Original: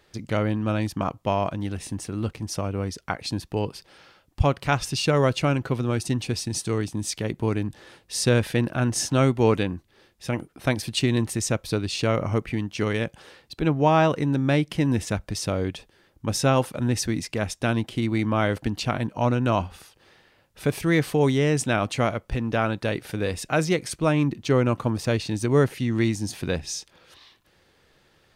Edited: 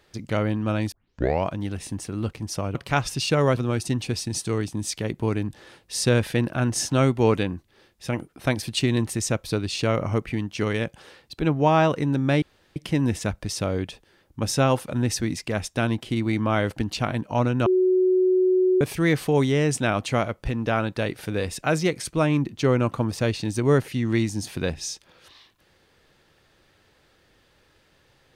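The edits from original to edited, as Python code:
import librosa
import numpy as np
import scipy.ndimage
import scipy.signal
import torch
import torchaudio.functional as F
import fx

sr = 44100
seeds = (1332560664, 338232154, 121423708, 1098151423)

y = fx.edit(x, sr, fx.tape_start(start_s=0.92, length_s=0.53),
    fx.cut(start_s=2.75, length_s=1.76),
    fx.cut(start_s=5.33, length_s=0.44),
    fx.insert_room_tone(at_s=14.62, length_s=0.34),
    fx.bleep(start_s=19.52, length_s=1.15, hz=370.0, db=-16.0), tone=tone)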